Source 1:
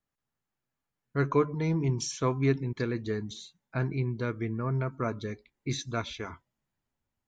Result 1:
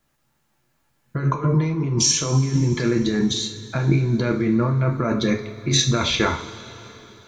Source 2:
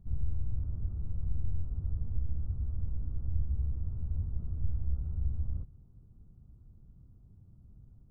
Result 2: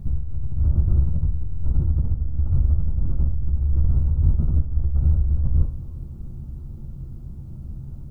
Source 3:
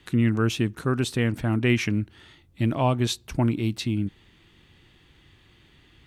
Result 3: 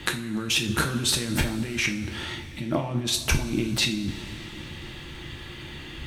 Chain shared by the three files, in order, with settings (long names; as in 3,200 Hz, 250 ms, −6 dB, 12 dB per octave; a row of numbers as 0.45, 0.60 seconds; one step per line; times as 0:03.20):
compressor whose output falls as the input rises −35 dBFS, ratio −1
coupled-rooms reverb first 0.36 s, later 3.6 s, from −18 dB, DRR 2 dB
normalise the peak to −6 dBFS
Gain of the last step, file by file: +12.5, +14.0, +6.0 decibels